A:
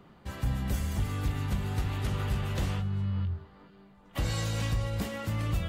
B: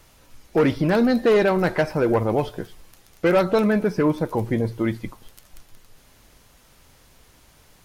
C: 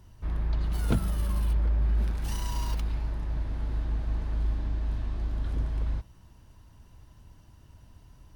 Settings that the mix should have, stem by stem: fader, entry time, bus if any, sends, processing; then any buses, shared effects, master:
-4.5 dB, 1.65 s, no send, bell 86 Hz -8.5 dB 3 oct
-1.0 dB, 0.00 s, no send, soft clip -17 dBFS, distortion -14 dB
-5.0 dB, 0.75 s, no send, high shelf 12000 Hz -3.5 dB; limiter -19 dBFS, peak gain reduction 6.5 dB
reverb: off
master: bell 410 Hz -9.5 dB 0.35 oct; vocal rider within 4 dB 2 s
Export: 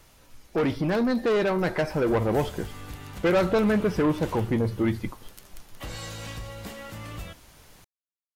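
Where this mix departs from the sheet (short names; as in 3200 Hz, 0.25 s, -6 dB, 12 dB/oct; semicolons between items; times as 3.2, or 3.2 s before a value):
stem C: muted; master: missing bell 410 Hz -9.5 dB 0.35 oct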